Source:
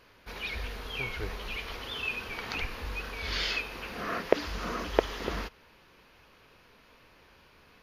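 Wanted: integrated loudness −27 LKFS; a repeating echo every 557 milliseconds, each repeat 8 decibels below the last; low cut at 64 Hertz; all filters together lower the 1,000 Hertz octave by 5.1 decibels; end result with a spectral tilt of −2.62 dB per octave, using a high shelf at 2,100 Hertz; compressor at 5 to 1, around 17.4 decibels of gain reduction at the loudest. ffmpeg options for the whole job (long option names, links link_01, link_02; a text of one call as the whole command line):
ffmpeg -i in.wav -af "highpass=64,equalizer=frequency=1000:width_type=o:gain=-5,highshelf=frequency=2100:gain=-7,acompressor=threshold=-39dB:ratio=5,aecho=1:1:557|1114|1671|2228|2785:0.398|0.159|0.0637|0.0255|0.0102,volume=15.5dB" out.wav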